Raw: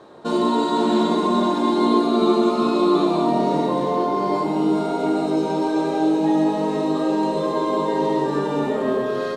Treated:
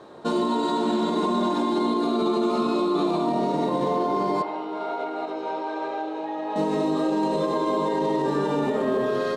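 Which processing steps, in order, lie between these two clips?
peak limiter -15.5 dBFS, peak gain reduction 10 dB; 4.42–6.56 s: band-pass 610–2800 Hz

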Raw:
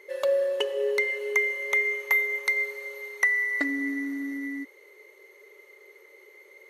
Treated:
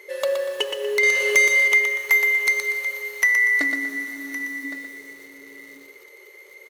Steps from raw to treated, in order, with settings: high-pass 85 Hz 24 dB/octave; treble shelf 2.4 kHz +6.5 dB; de-hum 139.4 Hz, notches 13; 1.03–1.68 s: overdrive pedal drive 16 dB, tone 7.4 kHz, clips at -11 dBFS; saturation -14 dBFS, distortion -20 dB; delay 1114 ms -13.5 dB; bit-crushed delay 120 ms, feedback 35%, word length 8-bit, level -6 dB; trim +3.5 dB

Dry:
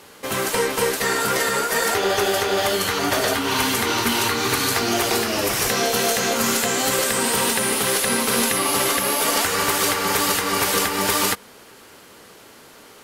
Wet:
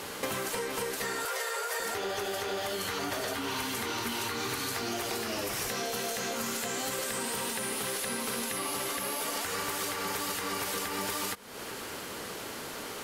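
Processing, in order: 1.25–1.80 s: steep high-pass 410 Hz 96 dB/octave; in parallel at 0 dB: peak limiter -19.5 dBFS, peak gain reduction 11 dB; on the sum: compression 10:1, threshold -31 dBFS, peak gain reduction 17.5 dB

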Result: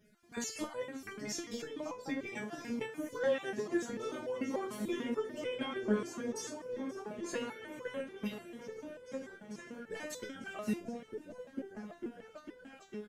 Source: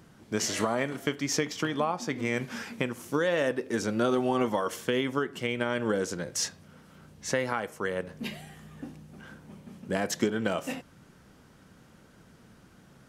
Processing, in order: random holes in the spectrogram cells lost 20%; delay with an opening low-pass 450 ms, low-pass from 200 Hz, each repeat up 1 oct, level 0 dB; transient shaper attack +5 dB, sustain +1 dB; on a send: delay 532 ms -20 dB; on the sum: resonator arpeggio 6.8 Hz 210–500 Hz; trim +4 dB

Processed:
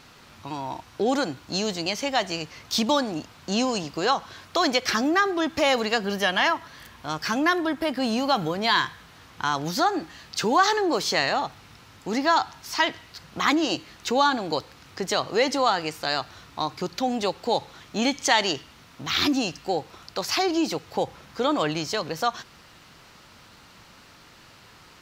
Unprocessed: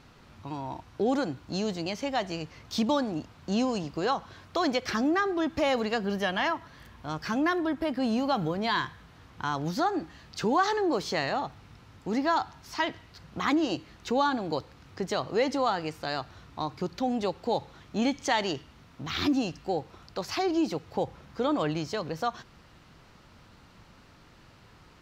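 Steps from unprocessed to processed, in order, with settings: tilt EQ +2 dB/octave; trim +5.5 dB

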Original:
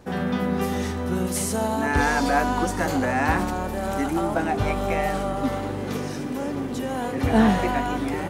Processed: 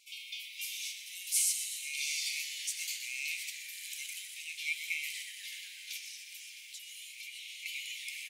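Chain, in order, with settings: brick-wall FIR high-pass 2.1 kHz; 5.97–7.66 s: compression, threshold -44 dBFS, peak gain reduction 9.5 dB; frequency-shifting echo 123 ms, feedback 64%, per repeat -87 Hz, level -11 dB

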